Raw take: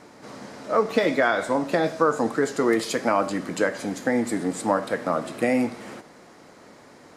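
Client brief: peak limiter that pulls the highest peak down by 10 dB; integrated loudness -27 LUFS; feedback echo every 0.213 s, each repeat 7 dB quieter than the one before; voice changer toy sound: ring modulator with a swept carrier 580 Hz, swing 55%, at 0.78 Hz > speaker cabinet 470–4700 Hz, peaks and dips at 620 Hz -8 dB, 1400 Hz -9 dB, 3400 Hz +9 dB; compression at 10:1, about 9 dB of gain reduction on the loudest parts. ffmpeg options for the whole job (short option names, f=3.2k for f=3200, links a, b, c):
-af "acompressor=threshold=-25dB:ratio=10,alimiter=limit=-23dB:level=0:latency=1,aecho=1:1:213|426|639|852|1065:0.447|0.201|0.0905|0.0407|0.0183,aeval=exprs='val(0)*sin(2*PI*580*n/s+580*0.55/0.78*sin(2*PI*0.78*n/s))':c=same,highpass=470,equalizer=f=620:t=q:w=4:g=-8,equalizer=f=1.4k:t=q:w=4:g=-9,equalizer=f=3.4k:t=q:w=4:g=9,lowpass=f=4.7k:w=0.5412,lowpass=f=4.7k:w=1.3066,volume=13dB"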